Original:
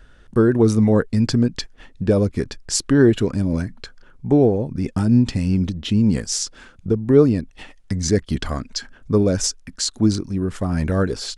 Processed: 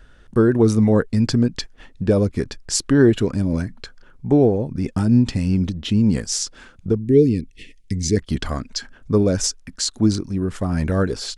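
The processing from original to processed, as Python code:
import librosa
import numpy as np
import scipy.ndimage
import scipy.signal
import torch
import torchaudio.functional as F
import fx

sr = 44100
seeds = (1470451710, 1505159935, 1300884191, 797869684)

y = fx.ellip_bandstop(x, sr, low_hz=440.0, high_hz=2100.0, order=3, stop_db=50, at=(6.97, 8.15), fade=0.02)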